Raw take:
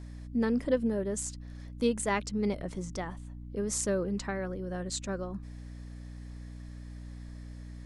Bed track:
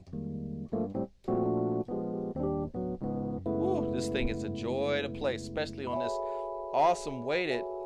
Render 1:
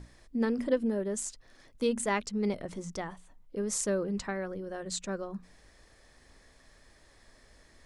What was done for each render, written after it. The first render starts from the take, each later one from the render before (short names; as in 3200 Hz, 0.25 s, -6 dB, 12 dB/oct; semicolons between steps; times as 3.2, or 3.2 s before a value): notches 60/120/180/240/300 Hz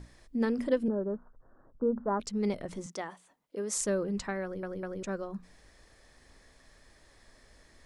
0.88–2.2 steep low-pass 1500 Hz 72 dB/oct; 2.86–3.77 HPF 270 Hz; 4.43 stutter in place 0.20 s, 3 plays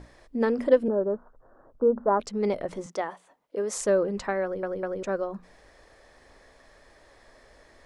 EQ curve 200 Hz 0 dB, 560 Hz +10 dB, 8700 Hz -2 dB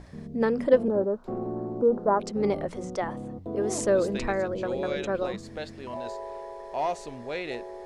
add bed track -3 dB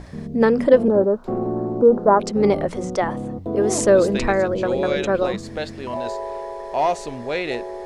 gain +8.5 dB; limiter -3 dBFS, peak gain reduction 3 dB